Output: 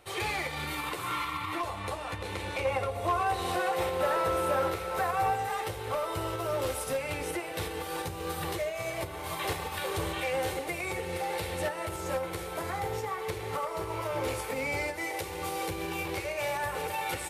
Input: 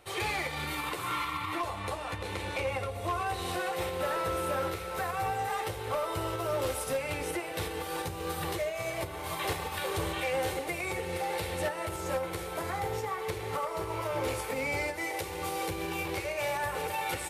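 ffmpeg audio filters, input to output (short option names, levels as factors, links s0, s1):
-filter_complex "[0:a]asettb=1/sr,asplit=3[s0][s1][s2];[s0]atrim=end=2.654[s3];[s1]atrim=start=2.65:end=5.36,asetpts=PTS-STARTPTS,afade=t=in:d=0.004:c=qsin,afade=t=out:st=2.706:d=0.004:c=qsin,equalizer=f=770:w=0.66:g=5[s4];[s2]atrim=start=5.356[s5];[s3][s4]acrossfade=d=0.004:c1=hsin:c2=qsin[s6];[s6][s5]acrossfade=d=0.004:c1=qsin:c2=hsin"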